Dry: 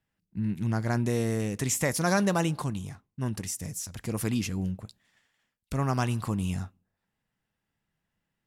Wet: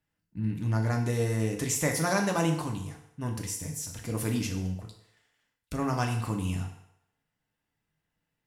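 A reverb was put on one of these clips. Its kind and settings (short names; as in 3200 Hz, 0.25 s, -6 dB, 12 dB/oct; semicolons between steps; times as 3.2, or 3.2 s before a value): FDN reverb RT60 0.78 s, low-frequency decay 0.7×, high-frequency decay 0.9×, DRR 1.5 dB; gain -2.5 dB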